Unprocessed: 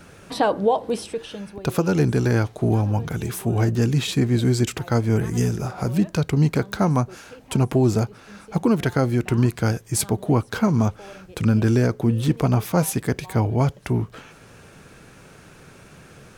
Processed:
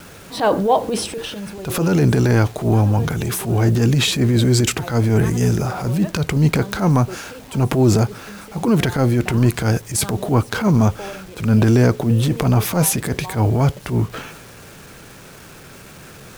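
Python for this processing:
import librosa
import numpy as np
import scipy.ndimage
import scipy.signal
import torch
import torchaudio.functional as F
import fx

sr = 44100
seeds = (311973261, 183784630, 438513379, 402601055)

y = fx.transient(x, sr, attack_db=-11, sustain_db=5)
y = fx.quant_dither(y, sr, seeds[0], bits=8, dither='none')
y = y * 10.0 ** (5.5 / 20.0)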